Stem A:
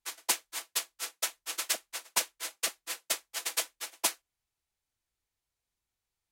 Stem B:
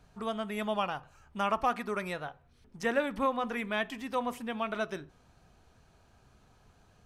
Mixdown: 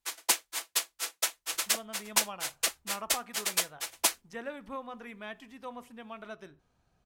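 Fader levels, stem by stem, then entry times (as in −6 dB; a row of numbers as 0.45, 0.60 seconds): +2.5, −10.5 decibels; 0.00, 1.50 seconds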